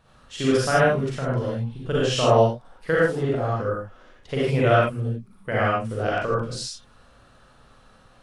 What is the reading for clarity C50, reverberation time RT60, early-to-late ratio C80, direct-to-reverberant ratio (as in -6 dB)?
-4.0 dB, not exponential, 0.0 dB, -7.5 dB